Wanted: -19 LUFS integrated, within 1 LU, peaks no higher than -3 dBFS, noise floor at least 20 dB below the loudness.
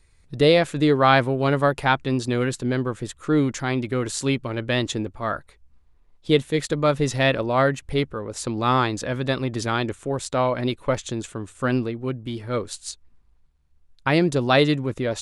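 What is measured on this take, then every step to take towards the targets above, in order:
loudness -23.0 LUFS; peak -2.0 dBFS; loudness target -19.0 LUFS
-> gain +4 dB; limiter -3 dBFS

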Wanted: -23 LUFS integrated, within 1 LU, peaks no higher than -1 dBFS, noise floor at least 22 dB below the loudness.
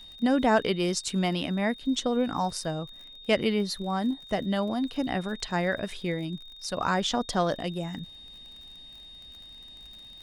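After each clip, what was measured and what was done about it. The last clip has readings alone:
ticks 42/s; steady tone 3700 Hz; tone level -45 dBFS; loudness -28.5 LUFS; peak -9.5 dBFS; loudness target -23.0 LUFS
-> de-click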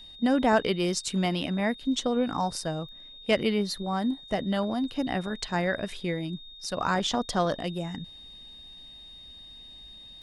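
ticks 0.29/s; steady tone 3700 Hz; tone level -45 dBFS
-> notch 3700 Hz, Q 30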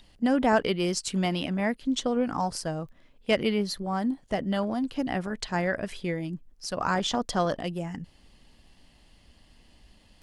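steady tone none; loudness -28.5 LUFS; peak -9.5 dBFS; loudness target -23.0 LUFS
-> gain +5.5 dB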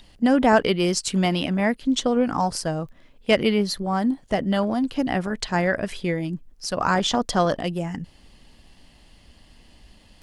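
loudness -23.0 LUFS; peak -4.0 dBFS; noise floor -54 dBFS

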